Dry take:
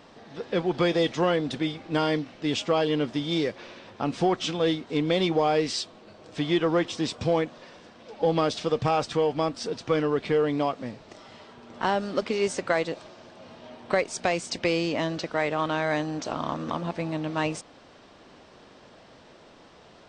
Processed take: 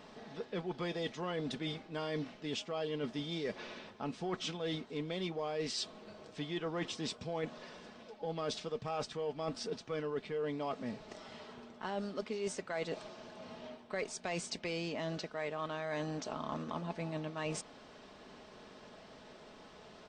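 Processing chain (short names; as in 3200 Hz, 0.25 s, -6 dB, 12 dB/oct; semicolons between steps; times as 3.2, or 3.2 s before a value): comb 4.7 ms, depth 37%; reverse; compressor 6:1, threshold -32 dBFS, peak gain reduction 14.5 dB; reverse; gain -3.5 dB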